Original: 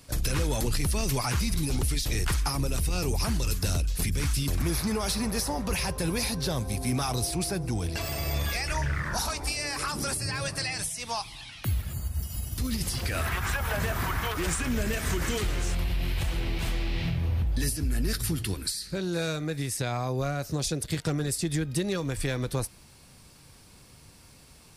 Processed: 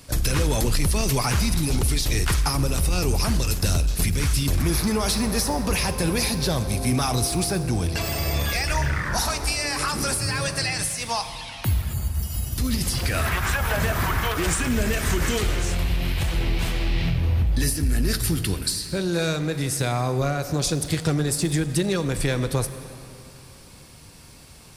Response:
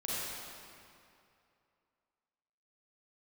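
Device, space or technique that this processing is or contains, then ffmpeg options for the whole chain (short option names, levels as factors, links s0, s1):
saturated reverb return: -filter_complex "[0:a]asplit=2[s0][s1];[1:a]atrim=start_sample=2205[s2];[s1][s2]afir=irnorm=-1:irlink=0,asoftclip=type=tanh:threshold=0.075,volume=0.266[s3];[s0][s3]amix=inputs=2:normalize=0,volume=1.68"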